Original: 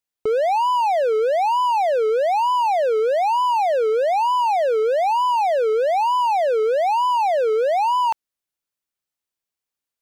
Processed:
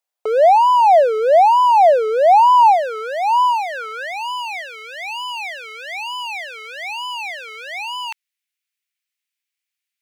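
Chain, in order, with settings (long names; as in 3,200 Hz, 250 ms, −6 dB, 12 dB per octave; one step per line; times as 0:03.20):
0:04.61–0:05.08: elliptic high-pass filter 170 Hz
high-pass filter sweep 650 Hz → 2,200 Hz, 0:02.10–0:04.70
level +2 dB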